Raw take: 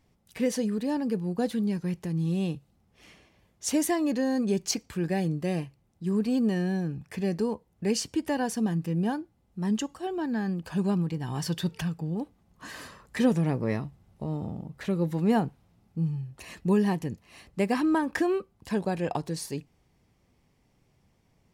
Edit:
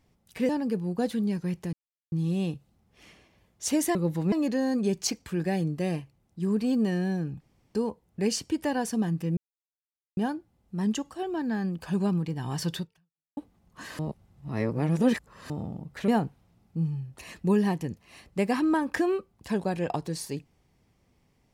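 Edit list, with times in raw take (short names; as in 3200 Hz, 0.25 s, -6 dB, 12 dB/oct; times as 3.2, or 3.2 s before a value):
0.49–0.89 cut
2.13 insert silence 0.39 s
7.05–7.39 room tone
9.01 insert silence 0.80 s
11.62–12.21 fade out exponential
12.83–14.34 reverse
14.92–15.29 move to 3.96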